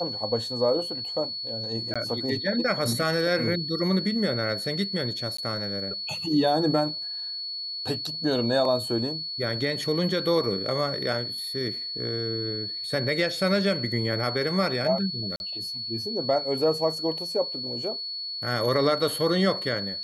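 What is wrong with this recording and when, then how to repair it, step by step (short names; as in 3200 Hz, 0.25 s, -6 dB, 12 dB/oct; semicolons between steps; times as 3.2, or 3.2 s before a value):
tone 4400 Hz -31 dBFS
1.94–1.96 gap 16 ms
5.37–5.38 gap 14 ms
15.36–15.4 gap 41 ms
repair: notch 4400 Hz, Q 30; interpolate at 1.94, 16 ms; interpolate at 5.37, 14 ms; interpolate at 15.36, 41 ms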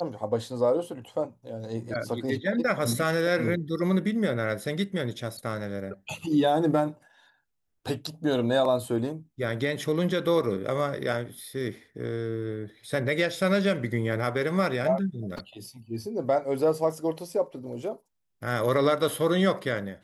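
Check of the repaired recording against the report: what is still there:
none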